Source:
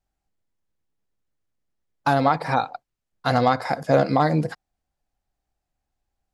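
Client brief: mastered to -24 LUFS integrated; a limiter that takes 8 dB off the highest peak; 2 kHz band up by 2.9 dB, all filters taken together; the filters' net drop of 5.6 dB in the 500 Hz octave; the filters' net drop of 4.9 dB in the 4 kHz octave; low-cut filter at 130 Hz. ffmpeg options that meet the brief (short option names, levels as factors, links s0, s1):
-af "highpass=130,equalizer=f=500:t=o:g=-7.5,equalizer=f=2000:t=o:g=6,equalizer=f=4000:t=o:g=-7,volume=1.5,alimiter=limit=0.282:level=0:latency=1"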